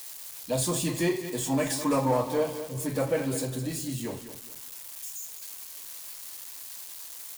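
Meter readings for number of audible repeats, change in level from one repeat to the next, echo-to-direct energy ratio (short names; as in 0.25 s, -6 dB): 3, -10.5 dB, -11.0 dB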